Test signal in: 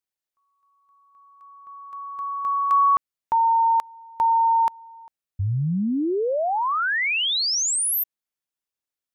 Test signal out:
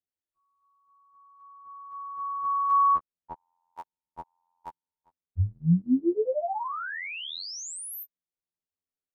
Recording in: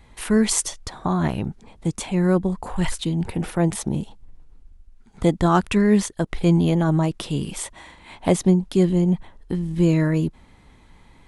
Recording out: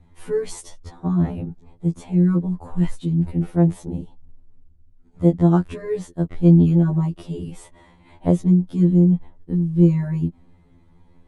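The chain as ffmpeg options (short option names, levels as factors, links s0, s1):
-af "tiltshelf=f=790:g=8,afftfilt=real='re*2*eq(mod(b,4),0)':imag='im*2*eq(mod(b,4),0)':win_size=2048:overlap=0.75,volume=0.562"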